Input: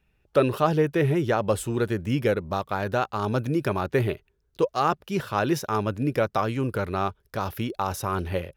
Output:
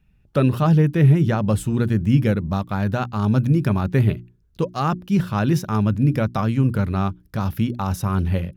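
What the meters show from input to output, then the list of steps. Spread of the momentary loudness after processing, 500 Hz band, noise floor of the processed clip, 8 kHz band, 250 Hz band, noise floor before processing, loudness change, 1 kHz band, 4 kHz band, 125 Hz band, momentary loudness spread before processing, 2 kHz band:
8 LU, -2.0 dB, -59 dBFS, n/a, +8.0 dB, -70 dBFS, +5.5 dB, -1.0 dB, 0.0 dB, +11.0 dB, 6 LU, 0.0 dB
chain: resonant low shelf 290 Hz +10 dB, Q 1.5; notches 60/120/180/240/300/360 Hz

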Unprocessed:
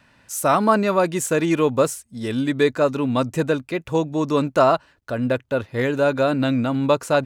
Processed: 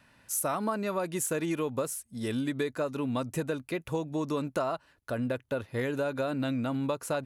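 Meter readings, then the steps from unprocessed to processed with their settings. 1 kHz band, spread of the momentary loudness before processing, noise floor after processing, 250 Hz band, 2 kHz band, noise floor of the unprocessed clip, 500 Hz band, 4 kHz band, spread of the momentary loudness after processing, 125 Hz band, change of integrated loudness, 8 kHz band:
-13.5 dB, 7 LU, -66 dBFS, -10.0 dB, -11.5 dB, -59 dBFS, -12.5 dB, -11.0 dB, 4 LU, -10.0 dB, -11.0 dB, -5.0 dB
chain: bell 11000 Hz +11 dB 0.4 oct; compressor, threshold -22 dBFS, peak gain reduction 11 dB; gain -5.5 dB

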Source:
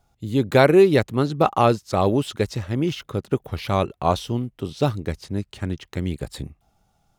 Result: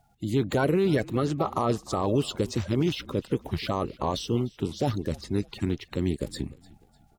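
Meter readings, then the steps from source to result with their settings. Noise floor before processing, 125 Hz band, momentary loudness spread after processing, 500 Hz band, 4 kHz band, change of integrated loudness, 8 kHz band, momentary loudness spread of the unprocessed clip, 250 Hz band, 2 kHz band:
-66 dBFS, -4.5 dB, 7 LU, -8.0 dB, -3.5 dB, -6.0 dB, -1.5 dB, 15 LU, -4.0 dB, -8.0 dB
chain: bin magnitudes rounded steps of 30 dB; limiter -15.5 dBFS, peak gain reduction 11.5 dB; frequency-shifting echo 0.3 s, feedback 41%, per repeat -44 Hz, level -21.5 dB

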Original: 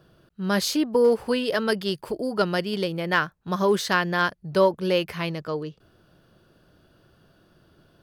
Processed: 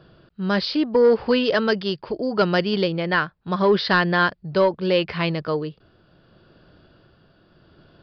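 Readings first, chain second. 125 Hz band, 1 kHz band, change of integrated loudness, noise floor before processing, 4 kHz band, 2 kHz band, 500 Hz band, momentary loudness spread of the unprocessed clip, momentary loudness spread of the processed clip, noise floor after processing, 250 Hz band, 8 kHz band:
+4.0 dB, +2.5 dB, +3.0 dB, -62 dBFS, +3.0 dB, +3.5 dB, +3.0 dB, 9 LU, 9 LU, -60 dBFS, +3.5 dB, under -15 dB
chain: tremolo 0.75 Hz, depth 38%; sine folder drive 4 dB, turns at -7.5 dBFS; downsampling 11025 Hz; gain -2 dB

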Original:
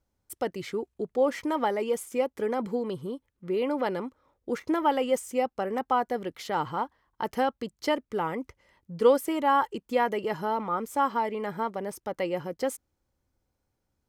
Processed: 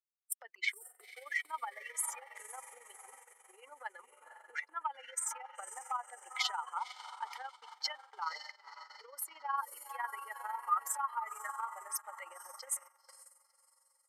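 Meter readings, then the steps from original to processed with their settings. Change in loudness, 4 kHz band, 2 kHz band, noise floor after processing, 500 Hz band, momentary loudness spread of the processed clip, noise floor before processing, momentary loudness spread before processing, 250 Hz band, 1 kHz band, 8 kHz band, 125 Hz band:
-10.5 dB, -2.0 dB, -4.0 dB, -73 dBFS, -30.5 dB, 18 LU, -80 dBFS, 11 LU, under -40 dB, -10.5 dB, +4.5 dB, under -40 dB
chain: spectral contrast raised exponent 2; on a send: diffused feedback echo 0.517 s, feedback 47%, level -12 dB; on the sum: compressor 6:1, threshold -28 dBFS, peak gain reduction 12 dB; gate -40 dBFS, range -13 dB; HPF 1400 Hz 24 dB/oct; AM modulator 22 Hz, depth 45%; gain +11 dB

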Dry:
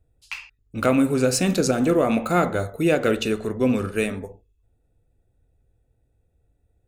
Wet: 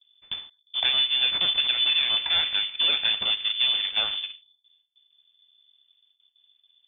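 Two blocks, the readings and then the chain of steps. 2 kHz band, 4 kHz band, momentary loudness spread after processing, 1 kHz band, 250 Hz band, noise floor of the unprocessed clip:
-1.0 dB, +17.0 dB, 14 LU, -12.0 dB, under -30 dB, -68 dBFS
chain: gate with hold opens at -57 dBFS; compressor 3:1, threshold -23 dBFS, peak gain reduction 7.5 dB; full-wave rectifier; inverted band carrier 3500 Hz

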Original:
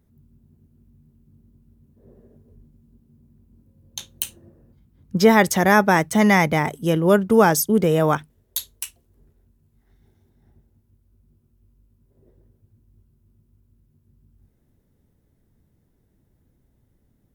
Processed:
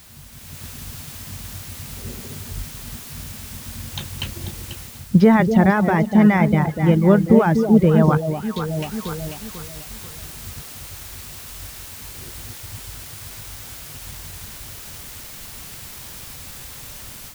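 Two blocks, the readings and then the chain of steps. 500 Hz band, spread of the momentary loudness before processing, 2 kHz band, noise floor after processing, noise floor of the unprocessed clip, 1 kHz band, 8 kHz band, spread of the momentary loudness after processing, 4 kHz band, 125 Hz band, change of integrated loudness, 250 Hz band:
-0.5 dB, 19 LU, -4.0 dB, -38 dBFS, -65 dBFS, -2.0 dB, -1.5 dB, 20 LU, 0.0 dB, +7.0 dB, +1.0 dB, +5.0 dB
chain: air absorption 220 m; limiter -9 dBFS, peak gain reduction 5 dB; on a send: echo with dull and thin repeats by turns 0.245 s, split 830 Hz, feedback 58%, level -5 dB; on the sum: reverb removal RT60 0.8 s; tone controls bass +10 dB, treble -6 dB; in parallel at -10 dB: requantised 6-bit, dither triangular; on the sum: AGC gain up to 9.5 dB; gain -1 dB

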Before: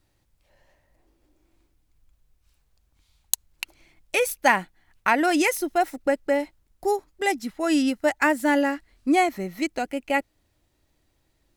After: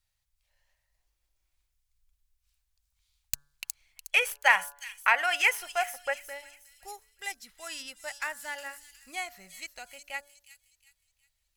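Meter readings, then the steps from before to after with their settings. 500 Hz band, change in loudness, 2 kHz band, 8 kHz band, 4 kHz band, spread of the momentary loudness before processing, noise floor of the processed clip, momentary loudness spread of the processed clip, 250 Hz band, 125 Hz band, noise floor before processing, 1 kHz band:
-15.0 dB, -5.5 dB, -1.5 dB, -6.0 dB, -1.5 dB, 9 LU, -79 dBFS, 20 LU, under -30 dB, n/a, -69 dBFS, -8.0 dB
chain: tracing distortion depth 0.054 ms; passive tone stack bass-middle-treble 10-0-10; de-hum 143 Hz, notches 12; spectral gain 3.97–6.14, 400–3400 Hz +11 dB; on a send: thin delay 0.363 s, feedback 37%, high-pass 5100 Hz, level -4 dB; on the sum: gain -5.5 dB

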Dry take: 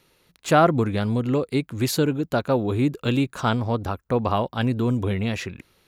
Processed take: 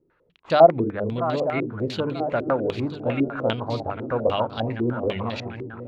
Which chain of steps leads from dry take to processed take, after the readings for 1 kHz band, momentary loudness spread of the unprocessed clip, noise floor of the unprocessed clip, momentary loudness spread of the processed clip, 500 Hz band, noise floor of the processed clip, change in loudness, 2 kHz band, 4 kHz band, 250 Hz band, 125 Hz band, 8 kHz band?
+0.5 dB, 7 LU, -65 dBFS, 13 LU, +3.0 dB, -66 dBFS, -0.5 dB, -2.5 dB, -2.5 dB, -4.0 dB, -6.0 dB, under -15 dB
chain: regenerating reverse delay 0.469 s, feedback 71%, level -10 dB; notches 50/100/150/200/250/300/350/400/450 Hz; dynamic EQ 590 Hz, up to +6 dB, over -36 dBFS, Q 3.3; stepped low-pass 10 Hz 360–4300 Hz; gain -6 dB

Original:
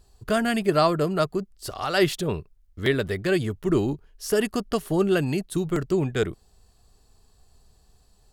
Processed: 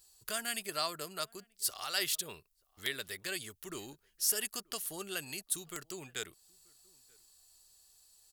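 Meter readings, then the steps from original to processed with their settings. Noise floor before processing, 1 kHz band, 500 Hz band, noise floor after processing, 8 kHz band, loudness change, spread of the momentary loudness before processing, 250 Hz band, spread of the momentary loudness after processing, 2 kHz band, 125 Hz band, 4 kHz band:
-60 dBFS, -15.0 dB, -21.5 dB, -75 dBFS, +3.5 dB, -11.5 dB, 8 LU, -24.5 dB, 12 LU, -10.0 dB, -27.0 dB, -4.0 dB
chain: in parallel at -1 dB: compressor, threshold -34 dBFS, peak gain reduction 17.5 dB; on the sum: pre-emphasis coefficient 0.97; outdoor echo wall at 160 m, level -28 dB

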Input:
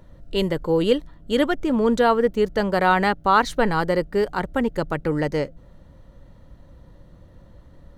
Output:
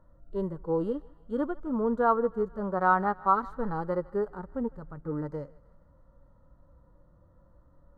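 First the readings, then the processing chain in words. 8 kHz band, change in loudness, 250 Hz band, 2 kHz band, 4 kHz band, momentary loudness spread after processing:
under -30 dB, -8.0 dB, -9.0 dB, -11.5 dB, under -30 dB, 12 LU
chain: harmonic-percussive split percussive -17 dB; resonant high shelf 1800 Hz -11.5 dB, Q 3; thinning echo 0.156 s, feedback 60%, high-pass 710 Hz, level -20 dB; gain -8.5 dB

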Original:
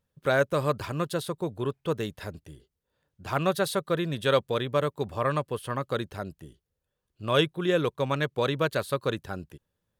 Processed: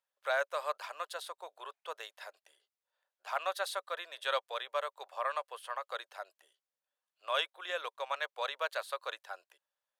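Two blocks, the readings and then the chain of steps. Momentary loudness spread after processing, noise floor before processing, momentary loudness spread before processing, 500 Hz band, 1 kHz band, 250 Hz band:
14 LU, -83 dBFS, 13 LU, -12.5 dB, -5.0 dB, under -35 dB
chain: steep high-pass 610 Hz 36 dB/oct; high shelf 10000 Hz -8 dB; gain -5 dB

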